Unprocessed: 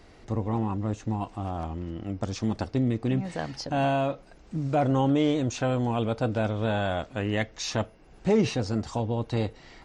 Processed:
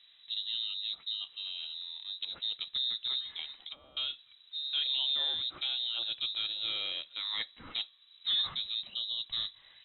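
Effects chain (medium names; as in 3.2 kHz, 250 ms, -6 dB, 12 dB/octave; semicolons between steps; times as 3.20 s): level-controlled noise filter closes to 2.1 kHz, open at -20 dBFS; frequency inversion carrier 3.9 kHz; 3.55–3.97 s: low-pass that closes with the level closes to 500 Hz, closed at -23.5 dBFS; trim -9 dB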